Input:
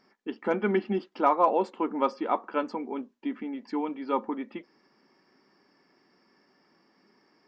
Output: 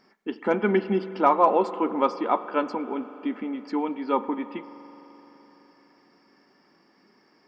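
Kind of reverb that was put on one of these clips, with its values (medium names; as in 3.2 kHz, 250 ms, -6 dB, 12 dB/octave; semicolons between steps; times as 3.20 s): spring tank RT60 4 s, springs 42 ms, chirp 80 ms, DRR 13 dB; trim +3.5 dB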